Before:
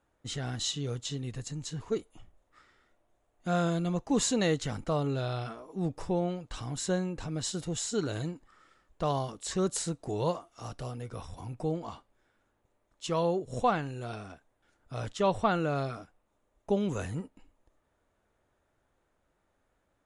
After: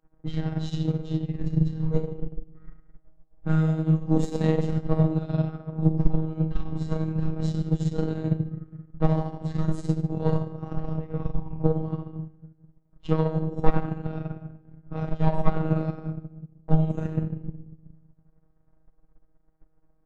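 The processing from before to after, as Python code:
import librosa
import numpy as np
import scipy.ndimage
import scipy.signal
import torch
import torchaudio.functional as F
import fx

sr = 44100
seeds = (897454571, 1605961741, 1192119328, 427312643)

p1 = fx.diode_clip(x, sr, knee_db=-23.0)
p2 = fx.env_lowpass(p1, sr, base_hz=1500.0, full_db=-26.0)
p3 = fx.tilt_eq(p2, sr, slope=-3.0)
p4 = fx.rider(p3, sr, range_db=10, speed_s=0.5)
p5 = p3 + (p4 * 10.0 ** (-2.0 / 20.0))
p6 = fx.room_shoebox(p5, sr, seeds[0], volume_m3=390.0, walls='mixed', distance_m=2.1)
p7 = fx.robotise(p6, sr, hz=158.0)
p8 = fx.transient(p7, sr, attack_db=9, sustain_db=-8)
p9 = p8 + fx.echo_single(p8, sr, ms=148, db=-21.5, dry=0)
y = p9 * 10.0 ** (-10.5 / 20.0)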